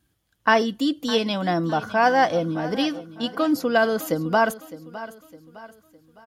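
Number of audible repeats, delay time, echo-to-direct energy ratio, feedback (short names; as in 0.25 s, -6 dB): 3, 0.609 s, -15.0 dB, 42%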